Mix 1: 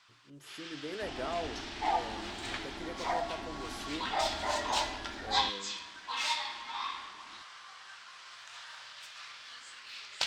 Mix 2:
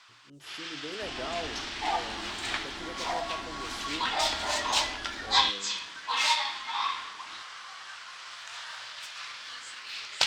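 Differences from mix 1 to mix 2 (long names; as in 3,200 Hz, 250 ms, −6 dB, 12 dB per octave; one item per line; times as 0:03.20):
first sound +9.0 dB
reverb: off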